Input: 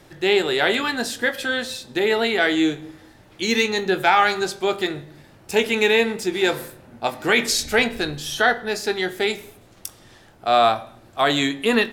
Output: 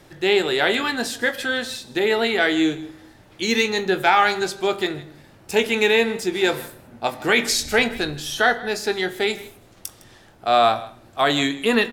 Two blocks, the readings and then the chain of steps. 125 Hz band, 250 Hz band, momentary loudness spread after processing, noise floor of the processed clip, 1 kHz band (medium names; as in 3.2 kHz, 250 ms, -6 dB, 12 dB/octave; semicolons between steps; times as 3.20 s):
0.0 dB, 0.0 dB, 13 LU, -51 dBFS, 0.0 dB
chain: delay 158 ms -19.5 dB